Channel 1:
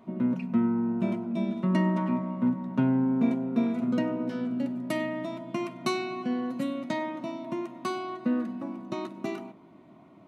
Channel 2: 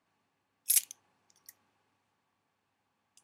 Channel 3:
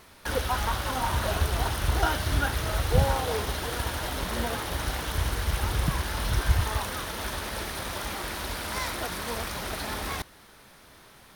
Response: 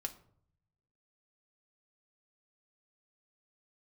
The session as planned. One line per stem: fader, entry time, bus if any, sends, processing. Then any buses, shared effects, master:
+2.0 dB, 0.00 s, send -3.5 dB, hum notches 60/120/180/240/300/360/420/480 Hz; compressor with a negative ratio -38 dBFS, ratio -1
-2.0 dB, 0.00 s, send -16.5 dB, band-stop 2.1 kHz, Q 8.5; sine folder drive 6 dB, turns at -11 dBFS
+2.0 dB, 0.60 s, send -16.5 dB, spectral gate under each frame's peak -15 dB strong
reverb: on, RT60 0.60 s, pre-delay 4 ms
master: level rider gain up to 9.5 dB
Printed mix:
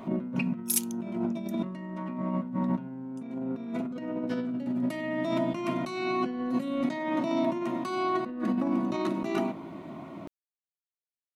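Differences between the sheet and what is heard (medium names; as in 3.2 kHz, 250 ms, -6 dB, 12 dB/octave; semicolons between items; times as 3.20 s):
stem 2: missing sine folder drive 6 dB, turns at -11 dBFS; stem 3: muted; master: missing level rider gain up to 9.5 dB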